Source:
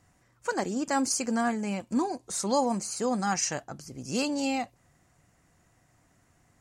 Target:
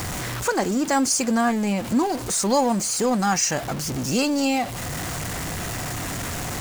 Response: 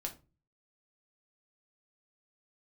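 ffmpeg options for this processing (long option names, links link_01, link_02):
-filter_complex "[0:a]aeval=exprs='val(0)+0.5*0.0211*sgn(val(0))':channel_layout=same,asplit=2[link_01][link_02];[link_02]acompressor=threshold=-38dB:ratio=6,volume=2.5dB[link_03];[link_01][link_03]amix=inputs=2:normalize=0,volume=3dB"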